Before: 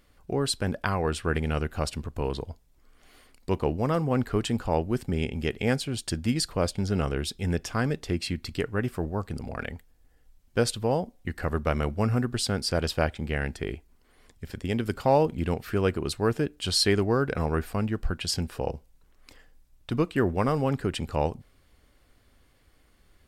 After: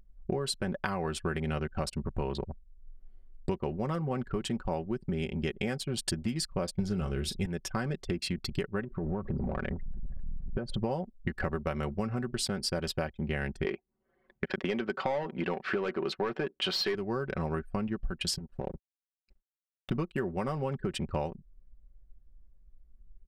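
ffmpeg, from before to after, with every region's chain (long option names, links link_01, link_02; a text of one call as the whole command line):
ffmpeg -i in.wav -filter_complex "[0:a]asettb=1/sr,asplit=3[link_01][link_02][link_03];[link_01]atrim=end=6.794[link_04];[link_02]atrim=start=6.79:end=7.46,asetpts=PTS-STARTPTS,afade=type=in:duration=0.004:curve=qsin,afade=type=out:start_time=0.666:duration=0.004:curve=qsin,lowshelf=frequency=160:gain=9.5,acontrast=77,asplit=2[link_05][link_06];[link_06]adelay=38,volume=-12.5dB[link_07];[link_05][link_07]amix=inputs=2:normalize=0,atrim=end_sample=29547[link_08];[link_03]atrim=start=7.456[link_09];[link_04][link_08]acrossfade=duration=0.004:curve1=hsin:curve2=qsin[link_10];[link_10][link_09]acrossfade=duration=0.004:curve1=qsin:curve2=hsin,asettb=1/sr,asplit=3[link_11][link_12][link_13];[link_11]atrim=end=8.844[link_14];[link_12]atrim=start=8.84:end=10.77,asetpts=PTS-STARTPTS,afade=type=in:duration=0.004:curve=qsin,afade=type=out:start_time=1.926:duration=0.004:curve=qsin,aeval=exprs='val(0)+0.5*0.0126*sgn(val(0))':channel_layout=same,lowpass=frequency=1800:poles=1,acompressor=threshold=-30dB:ratio=16:attack=3.2:release=140:knee=1:detection=peak[link_15];[link_13]atrim=start=10.766[link_16];[link_14][link_15]acrossfade=duration=0.004:curve1=hsin:curve2=qsin[link_17];[link_17][link_16]acrossfade=duration=0.004:curve1=qsin:curve2=hsin,asettb=1/sr,asplit=3[link_18][link_19][link_20];[link_18]atrim=end=13.654[link_21];[link_19]atrim=start=13.65:end=16.95,asetpts=PTS-STARTPTS,afade=type=in:duration=0.004:curve=qsin,afade=type=out:start_time=3.296:duration=0.004:curve=qsin,highpass=140,lowpass=4300,asplit=2[link_22][link_23];[link_23]highpass=frequency=720:poles=1,volume=20dB,asoftclip=type=tanh:threshold=-8.5dB[link_24];[link_22][link_24]amix=inputs=2:normalize=0,lowpass=frequency=2000:poles=1,volume=-6dB[link_25];[link_20]atrim=start=16.946[link_26];[link_21][link_25]acrossfade=duration=0.004:curve1=hsin:curve2=qsin[link_27];[link_27][link_26]acrossfade=duration=0.004:curve1=qsin:curve2=hsin,asettb=1/sr,asplit=3[link_28][link_29][link_30];[link_28]atrim=end=18.384[link_31];[link_29]atrim=start=18.38:end=19.9,asetpts=PTS-STARTPTS,afade=type=in:duration=0.004:curve=qsin,afade=type=out:start_time=1.516:duration=0.004:curve=qsin,acompressor=threshold=-43dB:ratio=2.5:attack=3.2:release=140:knee=1:detection=peak,acrusher=bits=6:mix=0:aa=0.5[link_32];[link_30]atrim=start=19.896[link_33];[link_31][link_32]acrossfade=duration=0.004:curve1=hsin:curve2=qsin[link_34];[link_34][link_33]acrossfade=duration=0.004:curve1=qsin:curve2=hsin,anlmdn=2.51,aecho=1:1:5.3:0.57,acompressor=threshold=-37dB:ratio=16,volume=8.5dB" out.wav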